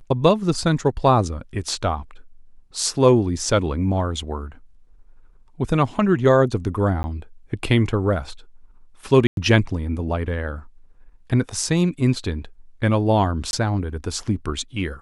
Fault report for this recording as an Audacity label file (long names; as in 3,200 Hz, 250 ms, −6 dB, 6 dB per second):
7.030000	7.040000	drop-out 10 ms
9.270000	9.370000	drop-out 102 ms
13.510000	13.530000	drop-out 21 ms